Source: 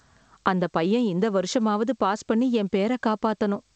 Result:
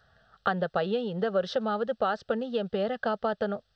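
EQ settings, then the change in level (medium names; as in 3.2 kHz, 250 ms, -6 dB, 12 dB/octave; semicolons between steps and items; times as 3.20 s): bass shelf 170 Hz -5.5 dB; treble shelf 5.6 kHz -11.5 dB; static phaser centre 1.5 kHz, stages 8; 0.0 dB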